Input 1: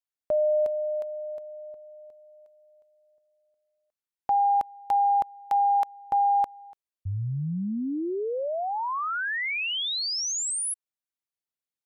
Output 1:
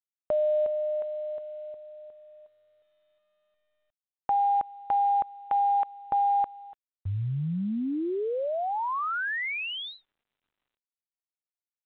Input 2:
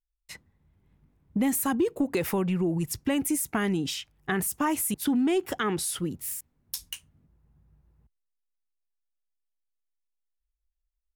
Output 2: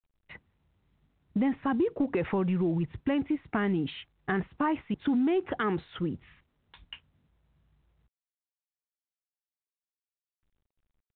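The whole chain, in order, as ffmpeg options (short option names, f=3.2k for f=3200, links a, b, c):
-filter_complex "[0:a]agate=range=-9dB:threshold=-57dB:ratio=16:release=58:detection=peak,lowpass=2.2k,asplit=2[a][b];[b]acompressor=threshold=-31dB:ratio=16:attack=8:release=43:knee=6:detection=peak,volume=-1dB[c];[a][c]amix=inputs=2:normalize=0,volume=-4dB" -ar 8000 -c:a pcm_mulaw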